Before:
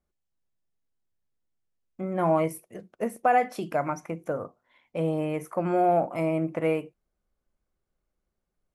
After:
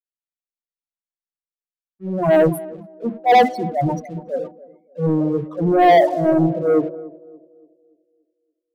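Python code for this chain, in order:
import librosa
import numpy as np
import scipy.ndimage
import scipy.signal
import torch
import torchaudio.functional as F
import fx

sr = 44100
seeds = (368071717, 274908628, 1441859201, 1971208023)

p1 = fx.transient(x, sr, attack_db=-8, sustain_db=6)
p2 = fx.spec_topn(p1, sr, count=4)
p3 = fx.leveller(p2, sr, passes=2)
p4 = p3 + fx.echo_banded(p3, sr, ms=286, feedback_pct=68, hz=380.0, wet_db=-10.0, dry=0)
p5 = fx.band_widen(p4, sr, depth_pct=100)
y = p5 * 10.0 ** (6.0 / 20.0)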